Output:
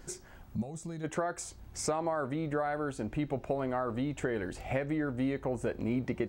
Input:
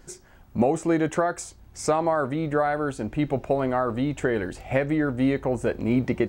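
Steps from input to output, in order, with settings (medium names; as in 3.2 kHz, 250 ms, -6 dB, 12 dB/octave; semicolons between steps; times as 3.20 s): compression 2:1, threshold -36 dBFS, peak gain reduction 11 dB; time-frequency box 0.55–1.04 s, 230–3300 Hz -13 dB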